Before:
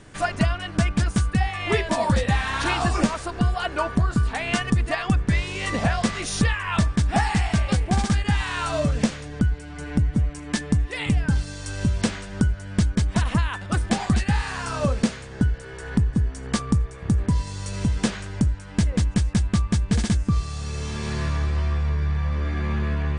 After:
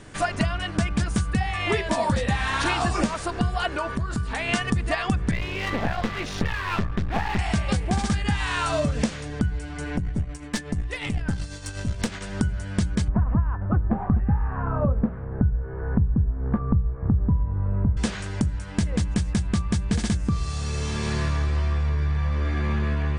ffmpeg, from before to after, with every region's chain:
ffmpeg -i in.wav -filter_complex "[0:a]asettb=1/sr,asplit=3[link_01][link_02][link_03];[link_01]atrim=end=3.694[link_04];[link_02]atrim=start=3.69:end=4.49,asetpts=PTS-STARTPTS,afade=type=in:duration=0.004:curve=qsin,afade=type=out:start_time=0.796:duration=0.004:curve=qsin,acompressor=threshold=-26dB:ratio=3:attack=3.2:release=140:knee=1:detection=peak,bandreject=frequency=730:width=10[link_05];[link_03]atrim=start=4.486[link_06];[link_04][link_05]acrossfade=duration=0.004:curve1=hsin:curve2=qsin[link_07];[link_07][link_06]acrossfade=duration=0.004:curve1=qsin:curve2=hsin,asettb=1/sr,asplit=3[link_08][link_09][link_10];[link_08]atrim=end=5.314[link_11];[link_09]atrim=start=5.31:end=7.39,asetpts=PTS-STARTPTS,afade=type=in:duration=0.004:curve=qsin,afade=type=out:start_time=2.076:duration=0.004:curve=qsin,lowpass=3100,aeval=exprs='clip(val(0),-1,0.0237)':channel_layout=same[link_12];[link_10]atrim=start=7.386[link_13];[link_11][link_12]acrossfade=duration=0.004:curve1=hsin:curve2=qsin[link_14];[link_14][link_13]acrossfade=duration=0.004:curve1=qsin:curve2=hsin,asettb=1/sr,asplit=3[link_15][link_16][link_17];[link_15]atrim=end=9.964[link_18];[link_16]atrim=start=9.96:end=12.21,asetpts=PTS-STARTPTS,afade=type=in:duration=0.004:curve=qsin,afade=type=out:start_time=2.246:duration=0.004:curve=qsin,tremolo=f=8.2:d=0.57,aeval=exprs='(tanh(7.08*val(0)+0.55)-tanh(0.55))/7.08':channel_layout=same[link_19];[link_17]atrim=start=12.206[link_20];[link_18][link_19]acrossfade=duration=0.004:curve1=hsin:curve2=qsin[link_21];[link_21][link_20]acrossfade=duration=0.004:curve1=qsin:curve2=hsin,asettb=1/sr,asplit=3[link_22][link_23][link_24];[link_22]atrim=end=13.084[link_25];[link_23]atrim=start=13.08:end=17.97,asetpts=PTS-STARTPTS,afade=type=in:duration=0.004:curve=qsin,afade=type=out:start_time=4.886:duration=0.004:curve=qsin,lowpass=frequency=1300:width=0.5412,lowpass=frequency=1300:width=1.3066,lowshelf=frequency=140:gain=11[link_26];[link_24]atrim=start=17.966[link_27];[link_25][link_26]acrossfade=duration=0.004:curve1=hsin:curve2=qsin[link_28];[link_28][link_27]acrossfade=duration=0.004:curve1=qsin:curve2=hsin,bandreject=frequency=60:width_type=h:width=6,bandreject=frequency=120:width_type=h:width=6,bandreject=frequency=180:width_type=h:width=6,acompressor=threshold=-23dB:ratio=3,volume=2.5dB" out.wav

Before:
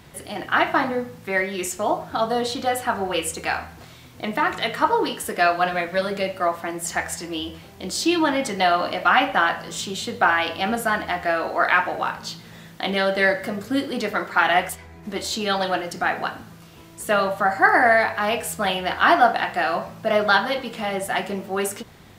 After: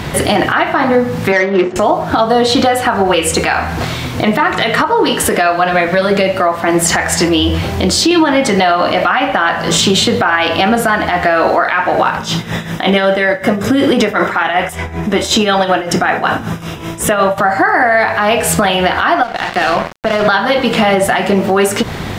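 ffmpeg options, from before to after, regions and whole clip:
ffmpeg -i in.wav -filter_complex "[0:a]asettb=1/sr,asplit=3[link_01][link_02][link_03];[link_01]atrim=end=1.324[link_04];[link_02]atrim=start=1.32:end=1.76,asetpts=PTS-STARTPTS,afade=type=in:duration=0.004:curve=qsin,afade=type=out:start_time=0.436:duration=0.004:curve=qsin,adynamicsmooth=sensitivity=2:basefreq=530,highpass=210,lowpass=4900[link_05];[link_03]atrim=start=1.756[link_06];[link_04][link_05]acrossfade=duration=0.004:curve1=hsin:curve2=qsin[link_07];[link_07][link_06]acrossfade=duration=0.004:curve1=qsin:curve2=hsin,asettb=1/sr,asplit=3[link_08][link_09][link_10];[link_08]atrim=end=7.284[link_11];[link_09]atrim=start=7.28:end=8.11,asetpts=PTS-STARTPTS,afade=type=in:duration=0.004:curve=qsin,afade=type=out:start_time=0.826:duration=0.004:curve=qsin,equalizer=frequency=89:width_type=o:width=0.53:gain=7.5,acompressor=threshold=-38dB:ratio=2:attack=3.2:release=140:knee=1:detection=peak[link_12];[link_10]atrim=start=8.106[link_13];[link_11][link_12]acrossfade=duration=0.004:curve1=hsin:curve2=qsin[link_14];[link_14][link_13]acrossfade=duration=0.004:curve1=qsin:curve2=hsin,asettb=1/sr,asplit=3[link_15][link_16][link_17];[link_15]atrim=end=12.174[link_18];[link_16]atrim=start=12.17:end=17.38,asetpts=PTS-STARTPTS,afade=type=in:duration=0.004:curve=qsin,afade=type=out:start_time=5.206:duration=0.004:curve=qsin,asuperstop=centerf=4400:order=4:qfactor=6.5,tremolo=f=5.3:d=0.73[link_19];[link_17]atrim=start=17.376[link_20];[link_18][link_19]acrossfade=duration=0.004:curve1=hsin:curve2=qsin[link_21];[link_21][link_20]acrossfade=duration=0.004:curve1=qsin:curve2=hsin,asettb=1/sr,asplit=3[link_22][link_23][link_24];[link_22]atrim=end=19.234[link_25];[link_23]atrim=start=19.23:end=20.28,asetpts=PTS-STARTPTS,afade=type=in:duration=0.004:curve=qsin,afade=type=out:start_time=1.046:duration=0.004:curve=qsin,highshelf=frequency=9400:gain=-6,acrossover=split=130|3000[link_26][link_27][link_28];[link_27]acompressor=threshold=-23dB:ratio=4:attack=3.2:release=140:knee=2.83:detection=peak[link_29];[link_26][link_29][link_28]amix=inputs=3:normalize=0,aeval=exprs='sgn(val(0))*max(abs(val(0))-0.0211,0)':channel_layout=same[link_30];[link_24]atrim=start=20.276[link_31];[link_25][link_30]acrossfade=duration=0.004:curve1=hsin:curve2=qsin[link_32];[link_32][link_31]acrossfade=duration=0.004:curve1=qsin:curve2=hsin,highshelf=frequency=7000:gain=-10,acompressor=threshold=-32dB:ratio=10,alimiter=level_in=27dB:limit=-1dB:release=50:level=0:latency=1,volume=-1dB" out.wav

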